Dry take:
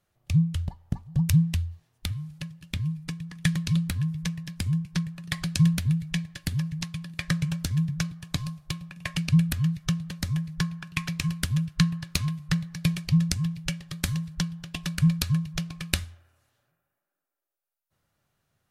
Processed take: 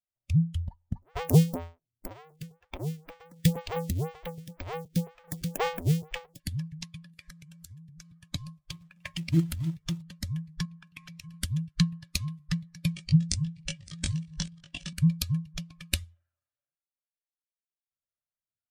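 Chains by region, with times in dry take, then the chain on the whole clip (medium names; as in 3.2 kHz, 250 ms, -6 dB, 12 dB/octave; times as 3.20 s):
1.02–6.40 s: square wave that keeps the level + lamp-driven phase shifter 2 Hz
7.12–8.10 s: treble shelf 5.3 kHz +7.5 dB + compression 10:1, threshold -35 dBFS + mains buzz 60 Hz, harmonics 8, -71 dBFS 0 dB/octave
8.61–10.02 s: short-mantissa float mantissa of 2-bit + hum notches 50/100/150/200/250/300/350/400/450 Hz + loudspeaker Doppler distortion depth 0.62 ms
10.65–11.34 s: compression, threshold -32 dBFS + de-hum 70.47 Hz, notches 5
12.95–14.93 s: chunks repeated in reverse 649 ms, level -14 dB + steep low-pass 9.7 kHz 96 dB/octave + doubling 20 ms -2.5 dB
whole clip: expander on every frequency bin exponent 1.5; dynamic bell 1.5 kHz, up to -8 dB, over -56 dBFS, Q 1.8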